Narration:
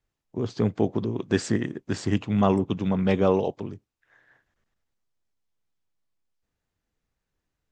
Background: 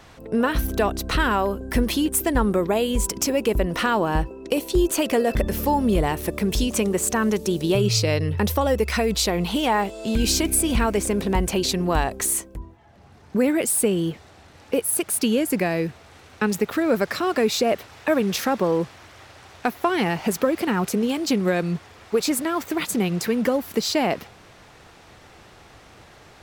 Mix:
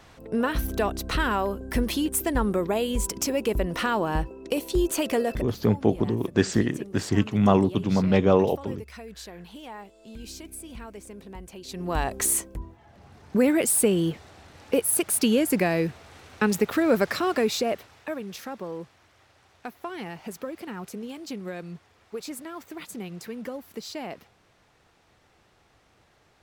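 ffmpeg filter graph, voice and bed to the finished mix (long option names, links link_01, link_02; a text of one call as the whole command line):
ffmpeg -i stem1.wav -i stem2.wav -filter_complex "[0:a]adelay=5050,volume=2dB[link_01];[1:a]volume=15.5dB,afade=type=out:start_time=5.22:duration=0.33:silence=0.158489,afade=type=in:start_time=11.65:duration=0.6:silence=0.105925,afade=type=out:start_time=17.05:duration=1.14:silence=0.211349[link_02];[link_01][link_02]amix=inputs=2:normalize=0" out.wav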